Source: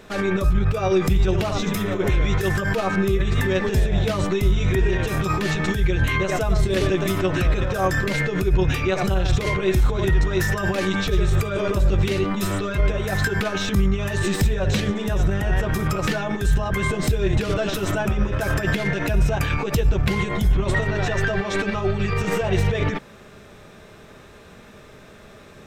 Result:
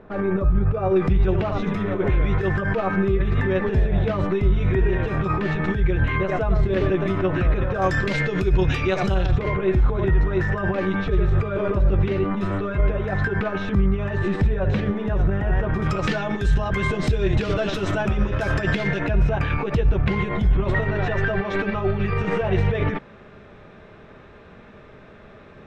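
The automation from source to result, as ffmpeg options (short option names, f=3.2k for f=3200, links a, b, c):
-af "asetnsamples=n=441:p=0,asendcmd='0.96 lowpass f 2000;7.82 lowpass f 4900;9.26 lowpass f 1800;15.82 lowpass f 4600;19 lowpass f 2500',lowpass=1.2k"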